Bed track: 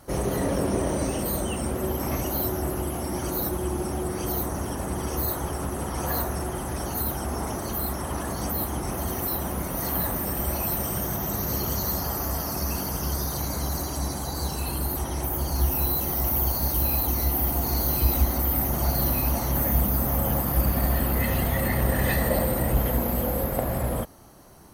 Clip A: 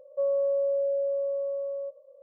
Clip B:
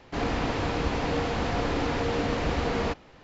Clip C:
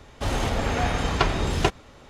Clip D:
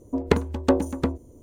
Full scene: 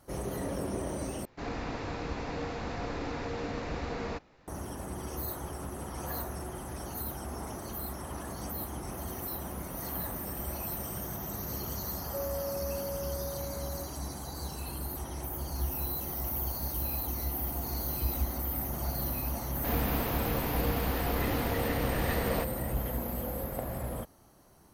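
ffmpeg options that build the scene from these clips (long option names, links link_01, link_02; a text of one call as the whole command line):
ffmpeg -i bed.wav -i cue0.wav -i cue1.wav -filter_complex "[2:a]asplit=2[link_01][link_02];[0:a]volume=-9.5dB[link_03];[link_01]equalizer=frequency=3100:width_type=o:width=0.22:gain=-7[link_04];[1:a]equalizer=frequency=470:width=3.2:gain=13.5[link_05];[link_03]asplit=2[link_06][link_07];[link_06]atrim=end=1.254[link_08];[link_04]atrim=end=3.23,asetpts=PTS-STARTPTS,volume=-8.5dB[link_09];[link_07]atrim=start=4.476[link_10];[link_05]atrim=end=2.22,asetpts=PTS-STARTPTS,volume=-17dB,afade=type=in:duration=0.004:curve=hsin,afade=type=out:start_time=2.216:duration=0.004:curve=hsin,adelay=11960[link_11];[link_02]atrim=end=3.23,asetpts=PTS-STARTPTS,volume=-5.5dB,afade=type=in:duration=0.004:curve=hsin,afade=type=out:start_time=3.226:duration=0.004:curve=hsin,adelay=19510[link_12];[link_08][link_09]acrossfade=duration=0.004:curve1=hsin:curve2=hsin[link_13];[link_13][link_10]acrossfade=duration=0.004:curve1=hsin:curve2=hsin[link_14];[link_14][link_11][link_12]amix=inputs=3:normalize=0" out.wav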